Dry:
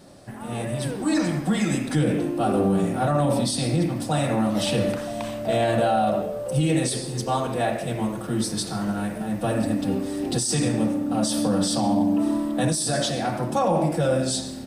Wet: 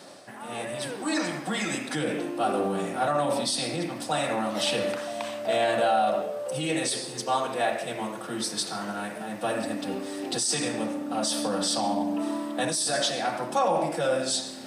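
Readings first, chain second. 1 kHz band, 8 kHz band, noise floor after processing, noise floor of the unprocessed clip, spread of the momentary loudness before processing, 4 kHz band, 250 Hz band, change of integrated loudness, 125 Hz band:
−1.0 dB, −1.0 dB, −39 dBFS, −33 dBFS, 6 LU, +1.0 dB, −8.5 dB, −4.0 dB, −14.5 dB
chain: meter weighting curve A
reversed playback
upward compression, threshold −38 dBFS
reversed playback

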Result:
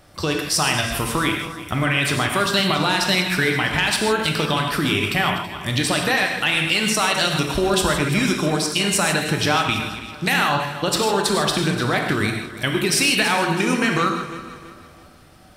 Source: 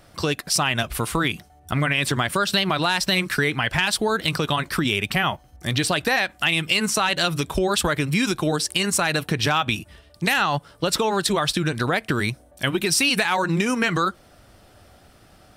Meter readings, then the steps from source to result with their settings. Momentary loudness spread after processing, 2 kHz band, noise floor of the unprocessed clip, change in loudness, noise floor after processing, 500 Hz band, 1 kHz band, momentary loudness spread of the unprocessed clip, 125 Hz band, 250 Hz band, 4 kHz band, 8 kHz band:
6 LU, +2.5 dB, −53 dBFS, +2.0 dB, −46 dBFS, +2.5 dB, +2.5 dB, 6 LU, +1.5 dB, +2.5 dB, +2.5 dB, +2.0 dB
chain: feedback delay that plays each chunk backwards 164 ms, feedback 61%, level −12 dB
reverb whose tail is shaped and stops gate 180 ms flat, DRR 2.5 dB

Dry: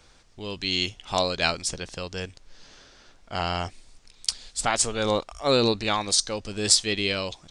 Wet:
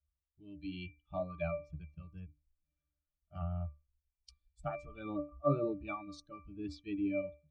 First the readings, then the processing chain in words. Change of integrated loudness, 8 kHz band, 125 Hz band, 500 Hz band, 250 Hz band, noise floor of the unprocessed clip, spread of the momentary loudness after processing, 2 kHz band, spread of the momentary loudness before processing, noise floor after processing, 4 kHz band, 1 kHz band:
−14.5 dB, below −40 dB, −7.0 dB, −11.5 dB, −8.0 dB, −56 dBFS, 16 LU, −20.0 dB, 14 LU, below −85 dBFS, −33.5 dB, −15.5 dB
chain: spectral dynamics exaggerated over time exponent 2
resonances in every octave D, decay 0.27 s
treble cut that deepens with the level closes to 1,400 Hz, closed at −45 dBFS
level +11.5 dB

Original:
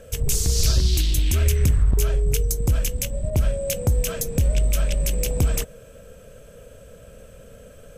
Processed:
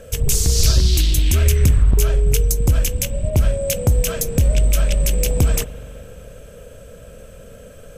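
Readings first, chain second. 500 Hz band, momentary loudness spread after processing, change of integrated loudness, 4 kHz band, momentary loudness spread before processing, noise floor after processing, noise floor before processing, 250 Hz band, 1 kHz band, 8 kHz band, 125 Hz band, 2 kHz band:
+4.5 dB, 5 LU, +4.5 dB, +4.5 dB, 5 LU, −40 dBFS, −46 dBFS, +4.5 dB, +4.5 dB, +4.5 dB, +4.5 dB, +4.5 dB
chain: spring reverb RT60 3.6 s, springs 42 ms, chirp 80 ms, DRR 16 dB
level +4.5 dB

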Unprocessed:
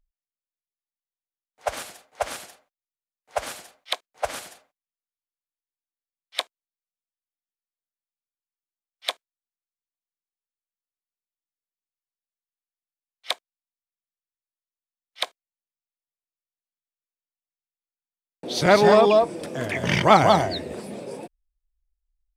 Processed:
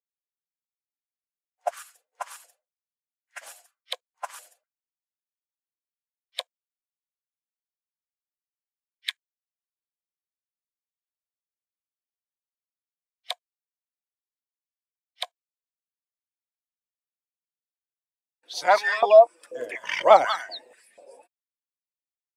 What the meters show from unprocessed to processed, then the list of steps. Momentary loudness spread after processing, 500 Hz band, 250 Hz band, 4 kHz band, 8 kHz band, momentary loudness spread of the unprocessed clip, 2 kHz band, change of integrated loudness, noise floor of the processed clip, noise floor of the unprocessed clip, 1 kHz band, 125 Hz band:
24 LU, −0.5 dB, below −20 dB, −5.0 dB, −6.5 dB, 21 LU, −1.5 dB, +1.5 dB, below −85 dBFS, below −85 dBFS, −1.0 dB, below −30 dB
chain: spectral dynamics exaggerated over time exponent 1.5
high-pass on a step sequencer 4.1 Hz 470–1,800 Hz
level −3.5 dB

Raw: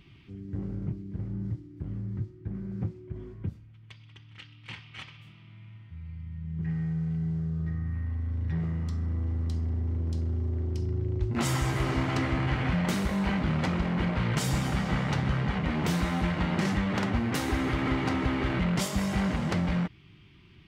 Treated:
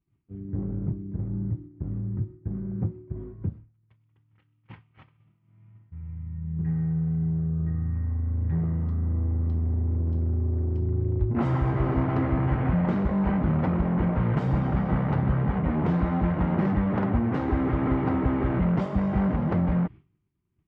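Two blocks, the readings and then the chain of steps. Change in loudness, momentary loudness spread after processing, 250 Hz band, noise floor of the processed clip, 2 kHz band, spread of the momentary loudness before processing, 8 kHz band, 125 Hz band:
+3.5 dB, 9 LU, +4.0 dB, −68 dBFS, −5.5 dB, 14 LU, below −25 dB, +4.0 dB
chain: low-pass filter 1,100 Hz 12 dB per octave
downward expander −40 dBFS
level +4 dB

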